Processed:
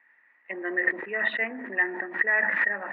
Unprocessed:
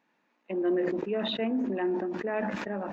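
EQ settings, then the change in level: resonant low-pass 1.9 kHz, resonance Q 16; bass shelf 210 Hz -11.5 dB; bass shelf 490 Hz -9.5 dB; +1.5 dB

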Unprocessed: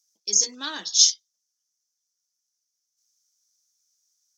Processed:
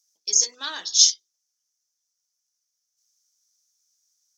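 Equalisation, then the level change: peaking EQ 220 Hz -14.5 dB 1.1 oct; hum notches 50/100/150/200/250/300/350/400/450 Hz; +1.0 dB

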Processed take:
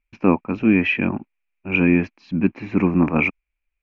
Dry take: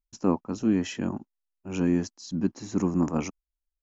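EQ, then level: resonant low-pass 2.4 kHz, resonance Q 11; distance through air 180 m; +7.5 dB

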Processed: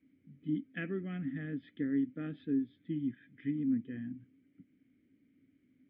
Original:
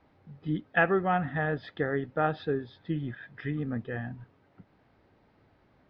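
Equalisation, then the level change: vowel filter i; tone controls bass +9 dB, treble -12 dB; +2.5 dB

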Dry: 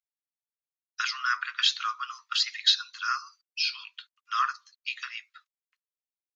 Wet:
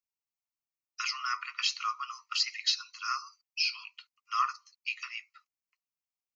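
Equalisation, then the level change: static phaser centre 2.4 kHz, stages 8; 0.0 dB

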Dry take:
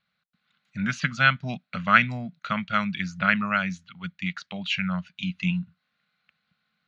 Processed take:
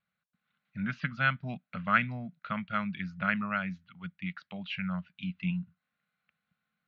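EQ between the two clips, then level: dynamic bell 5.1 kHz, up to +6 dB, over -58 dBFS, Q 8; distance through air 320 m; -5.5 dB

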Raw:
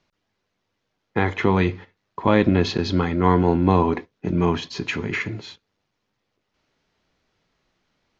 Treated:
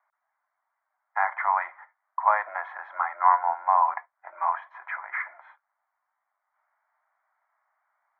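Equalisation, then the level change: steep high-pass 620 Hz 48 dB/octave; elliptic low-pass 2.3 kHz, stop band 50 dB; static phaser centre 1.1 kHz, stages 4; +4.0 dB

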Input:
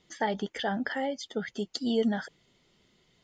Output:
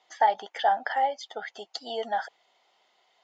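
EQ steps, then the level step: resonant high-pass 760 Hz, resonance Q 4.4; low-pass 6.3 kHz 12 dB/octave; 0.0 dB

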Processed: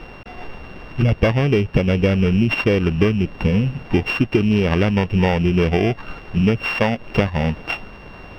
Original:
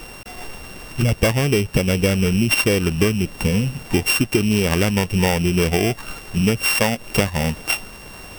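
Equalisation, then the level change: distance through air 280 m; +2.0 dB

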